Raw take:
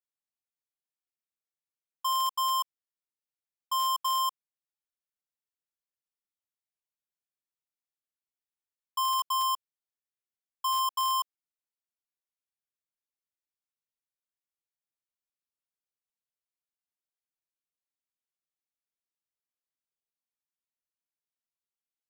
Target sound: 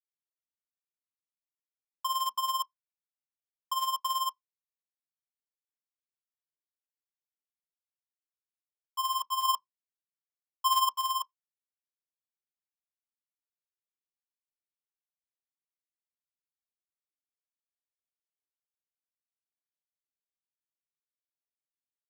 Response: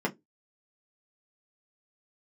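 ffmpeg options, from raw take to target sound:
-filter_complex "[0:a]asettb=1/sr,asplit=3[s0][s1][s2];[s0]atrim=end=9.454[s3];[s1]atrim=start=9.45:end=10.93,asetpts=PTS-STARTPTS,afade=t=in:d=0.004:c=qsin,afade=t=out:st=1.476:d=0.004:c=qsin,acontrast=28[s4];[s2]atrim=start=10.926[s5];[s3][s4]acrossfade=d=0.004:c1=hsin:c2=qsin[s6];[s6][s5]acrossfade=d=0.004:c1=qsin:c2=hsin,acrusher=bits=8:mix=0:aa=0.000001,tremolo=f=18:d=0.66,asplit=2[s7][s8];[1:a]atrim=start_sample=2205[s9];[s8][s9]afir=irnorm=-1:irlink=0,volume=0.0631[s10];[s7][s10]amix=inputs=2:normalize=0"

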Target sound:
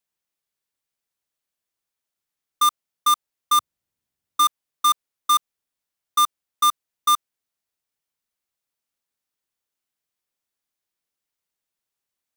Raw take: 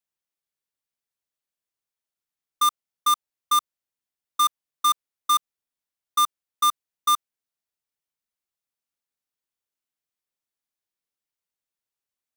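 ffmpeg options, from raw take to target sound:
-filter_complex "[0:a]asettb=1/sr,asplit=3[s0][s1][s2];[s0]atrim=end=3.584[s3];[s1]atrim=start=3.58:end=4.44,asetpts=PTS-STARTPTS,afade=t=in:d=0.004:c=qsin,afade=t=out:st=0.856:d=0.004:c=qsin,equalizer=f=93:w=0.41:g=12.5[s4];[s2]atrim=start=4.436[s5];[s3][s4]acrossfade=d=0.004:c1=hsin:c2=qsin[s6];[s6][s5]acrossfade=d=0.004:c1=qsin:c2=hsin,asplit=2[s7][s8];[s8]asoftclip=type=tanh:threshold=0.0668,volume=0.631[s9];[s7][s9]amix=inputs=2:normalize=0"

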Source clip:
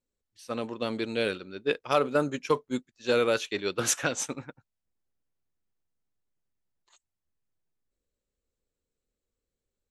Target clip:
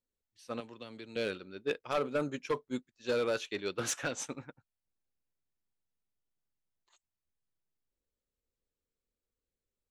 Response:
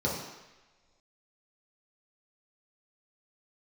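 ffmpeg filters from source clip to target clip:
-filter_complex "[0:a]asettb=1/sr,asplit=3[s0][s1][s2];[s0]atrim=end=0.604[s3];[s1]atrim=start=0.6:end=1.16,asetpts=PTS-STARTPTS,afade=t=in:d=0.004:c=qsin,afade=t=out:st=0.556:d=0.004:c=qsin,acrossover=split=120|1600[s4][s5][s6];[s4]acompressor=threshold=0.00158:ratio=4[s7];[s5]acompressor=threshold=0.00794:ratio=4[s8];[s6]acompressor=threshold=0.00562:ratio=4[s9];[s7][s8][s9]amix=inputs=3:normalize=0[s10];[s2]atrim=start=1.156[s11];[s3][s10]acrossfade=d=0.004:c1=hsin:c2=qsin[s12];[s12][s11]acrossfade=d=0.004:c1=qsin:c2=hsin,volume=8.91,asoftclip=hard,volume=0.112,highshelf=f=8800:g=-7,volume=0.531"

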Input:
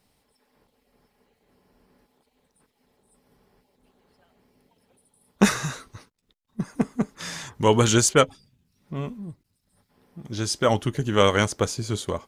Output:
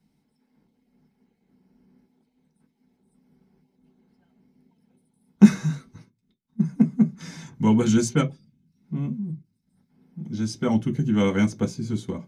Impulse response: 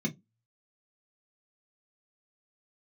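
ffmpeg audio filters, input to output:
-filter_complex "[0:a]asplit=2[s0][s1];[1:a]atrim=start_sample=2205,afade=t=out:st=0.3:d=0.01,atrim=end_sample=13671[s2];[s1][s2]afir=irnorm=-1:irlink=0,volume=0.596[s3];[s0][s3]amix=inputs=2:normalize=0,volume=0.355"

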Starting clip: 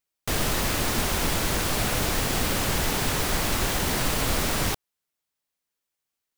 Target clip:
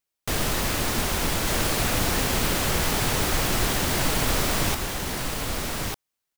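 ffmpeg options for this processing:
-af "aecho=1:1:1198:0.631"

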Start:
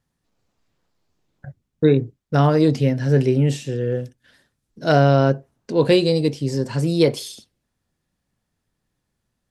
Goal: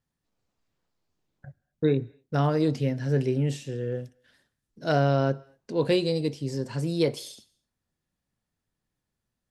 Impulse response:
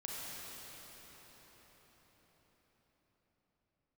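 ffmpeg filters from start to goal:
-filter_complex "[0:a]asplit=2[s0][s1];[s1]highpass=f=860:p=1[s2];[1:a]atrim=start_sample=2205,afade=t=out:st=0.31:d=0.01,atrim=end_sample=14112[s3];[s2][s3]afir=irnorm=-1:irlink=0,volume=0.119[s4];[s0][s4]amix=inputs=2:normalize=0,volume=0.398"

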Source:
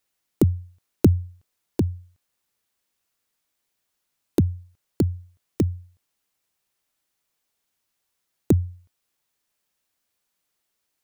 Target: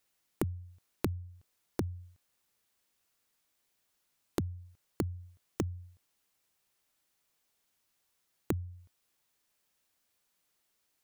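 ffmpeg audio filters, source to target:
-af "acompressor=threshold=0.0282:ratio=8"

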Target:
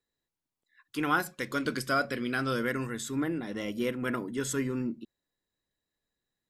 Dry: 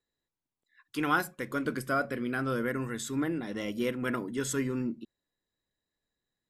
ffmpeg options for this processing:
-filter_complex "[0:a]asettb=1/sr,asplit=3[s0][s1][s2];[s0]atrim=end=1.264[s3];[s1]atrim=start=1.26:end=2.87,asetpts=PTS-STARTPTS,afade=t=in:d=0.004:c=qsin,afade=t=out:st=1.606:d=0.004:c=qsin,equalizer=f=4600:t=o:w=1.7:g=11[s4];[s2]atrim=start=2.866[s5];[s3][s4]acrossfade=d=0.004:c1=hsin:c2=qsin[s6];[s6][s5]acrossfade=d=0.004:c1=qsin:c2=hsin"

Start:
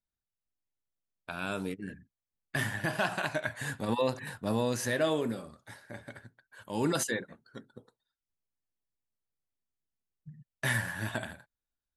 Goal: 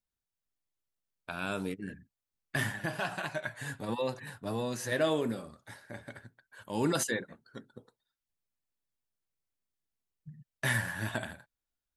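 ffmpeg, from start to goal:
-filter_complex "[0:a]asettb=1/sr,asplit=3[s0][s1][s2];[s0]atrim=end=2.724[s3];[s1]atrim=start=2.72:end=4.92,asetpts=PTS-STARTPTS,afade=t=in:d=0.004:c=qsin,afade=t=out:st=2.196:d=0.004:c=qsin,flanger=delay=5.2:depth=2:regen=-35:speed=1.5:shape=sinusoidal[s4];[s2]atrim=start=4.916[s5];[s3][s4]acrossfade=d=0.004:c1=hsin:c2=qsin[s6];[s6][s5]acrossfade=d=0.004:c1=qsin:c2=hsin"

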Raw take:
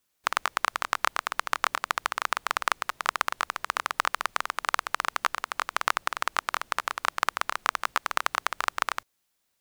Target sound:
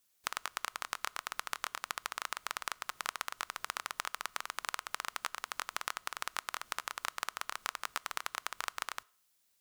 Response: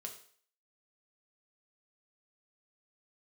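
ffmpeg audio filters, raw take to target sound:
-filter_complex "[0:a]highshelf=f=3000:g=8,acompressor=threshold=0.0447:ratio=6,asplit=2[s0][s1];[1:a]atrim=start_sample=2205[s2];[s1][s2]afir=irnorm=-1:irlink=0,volume=0.211[s3];[s0][s3]amix=inputs=2:normalize=0,volume=0.501"

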